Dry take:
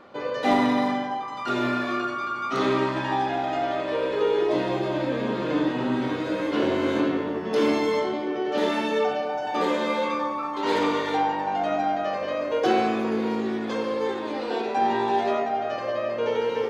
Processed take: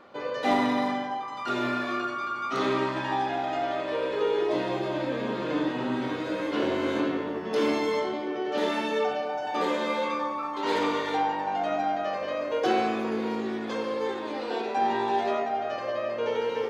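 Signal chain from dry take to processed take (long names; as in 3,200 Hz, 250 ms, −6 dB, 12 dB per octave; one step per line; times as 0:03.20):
low-shelf EQ 330 Hz −3.5 dB
level −2 dB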